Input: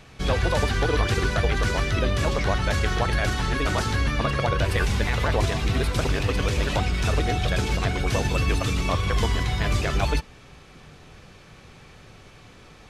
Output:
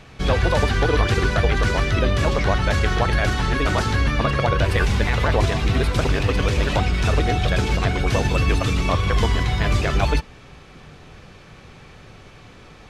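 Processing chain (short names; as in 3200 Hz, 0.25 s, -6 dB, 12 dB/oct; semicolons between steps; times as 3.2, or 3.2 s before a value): high shelf 6200 Hz -7 dB; gain +4 dB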